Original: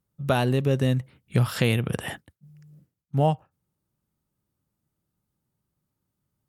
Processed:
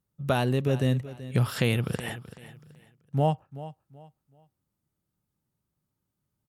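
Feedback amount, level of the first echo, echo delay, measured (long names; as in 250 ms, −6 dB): 29%, −15.5 dB, 380 ms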